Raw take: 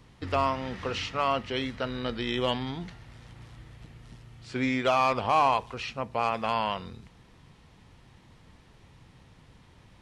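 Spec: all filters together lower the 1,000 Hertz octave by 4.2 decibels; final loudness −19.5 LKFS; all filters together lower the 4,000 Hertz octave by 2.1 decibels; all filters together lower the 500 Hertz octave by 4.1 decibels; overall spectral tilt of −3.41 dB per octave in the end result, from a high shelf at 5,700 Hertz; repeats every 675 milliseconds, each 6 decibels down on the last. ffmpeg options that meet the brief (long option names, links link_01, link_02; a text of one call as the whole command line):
ffmpeg -i in.wav -af "equalizer=frequency=500:width_type=o:gain=-4,equalizer=frequency=1000:width_type=o:gain=-4,equalizer=frequency=4000:width_type=o:gain=-5,highshelf=frequency=5700:gain=7,aecho=1:1:675|1350|2025|2700|3375|4050:0.501|0.251|0.125|0.0626|0.0313|0.0157,volume=12.5dB" out.wav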